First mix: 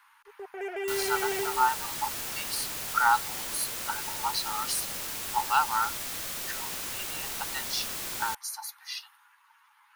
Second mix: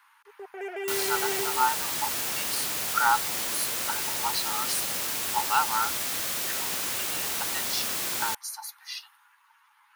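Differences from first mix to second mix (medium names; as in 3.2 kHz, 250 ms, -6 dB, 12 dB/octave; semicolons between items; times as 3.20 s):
second sound +5.5 dB; master: add high-pass 140 Hz 6 dB/octave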